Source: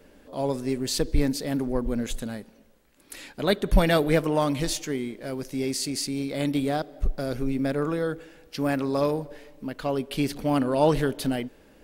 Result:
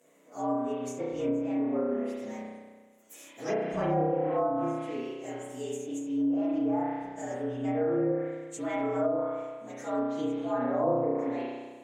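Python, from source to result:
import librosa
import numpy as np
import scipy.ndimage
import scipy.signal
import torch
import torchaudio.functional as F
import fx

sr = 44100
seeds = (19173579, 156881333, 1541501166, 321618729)

y = fx.partial_stretch(x, sr, pct=113)
y = scipy.signal.sosfilt(scipy.signal.butter(2, 270.0, 'highpass', fs=sr, output='sos'), y)
y = fx.high_shelf_res(y, sr, hz=5800.0, db=7.0, q=3.0)
y = fx.rev_spring(y, sr, rt60_s=1.4, pass_ms=(32,), chirp_ms=45, drr_db=-5.0)
y = fx.env_lowpass_down(y, sr, base_hz=670.0, full_db=-15.5)
y = F.gain(torch.from_numpy(y), -6.5).numpy()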